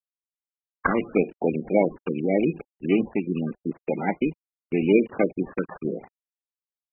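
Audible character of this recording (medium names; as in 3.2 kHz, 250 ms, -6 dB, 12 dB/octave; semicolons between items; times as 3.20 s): a quantiser's noise floor 8-bit, dither none; phasing stages 6, 0.83 Hz, lowest notch 720–2500 Hz; aliases and images of a low sample rate 2.8 kHz, jitter 20%; MP3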